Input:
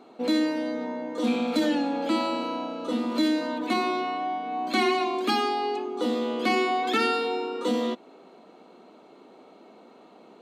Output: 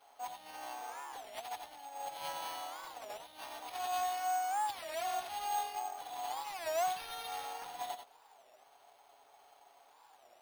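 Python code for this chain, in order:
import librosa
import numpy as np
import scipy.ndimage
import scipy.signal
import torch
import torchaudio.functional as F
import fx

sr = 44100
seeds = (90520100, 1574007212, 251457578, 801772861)

y = fx.lower_of_two(x, sr, delay_ms=7.1)
y = fx.peak_eq(y, sr, hz=950.0, db=-13.5, octaves=2.5)
y = fx.over_compress(y, sr, threshold_db=-38.0, ratio=-1.0)
y = fx.ladder_highpass(y, sr, hz=730.0, resonance_pct=75)
y = y + 10.0 ** (-7.5 / 20.0) * np.pad(y, (int(88 * sr / 1000.0), 0))[:len(y)]
y = np.repeat(y[::6], 6)[:len(y)]
y = fx.record_warp(y, sr, rpm=33.33, depth_cents=250.0)
y = y * 10.0 ** (6.0 / 20.0)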